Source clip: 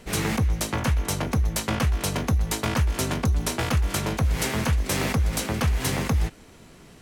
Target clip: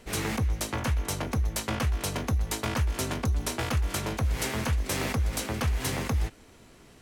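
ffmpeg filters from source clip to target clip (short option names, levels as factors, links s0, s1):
-af "equalizer=f=170:w=4.3:g=-7,volume=0.631"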